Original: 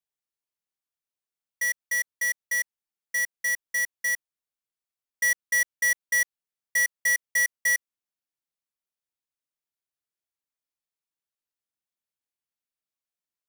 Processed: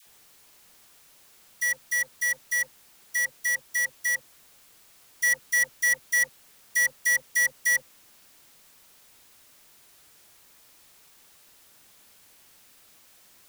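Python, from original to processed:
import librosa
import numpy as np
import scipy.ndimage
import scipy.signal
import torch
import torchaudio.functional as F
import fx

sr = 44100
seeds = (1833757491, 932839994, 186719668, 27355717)

y = x + 0.5 * 10.0 ** (-47.5 / 20.0) * np.sign(x)
y = fx.dispersion(y, sr, late='lows', ms=66.0, hz=780.0)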